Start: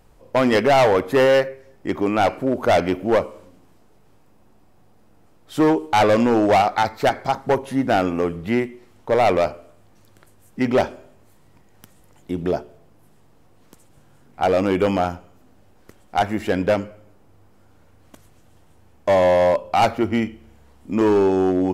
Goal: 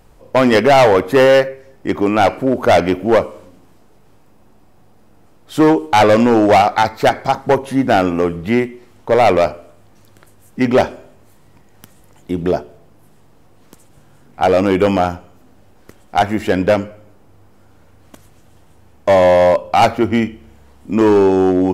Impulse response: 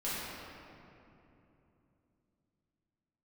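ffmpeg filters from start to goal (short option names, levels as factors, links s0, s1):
-af "volume=1.88"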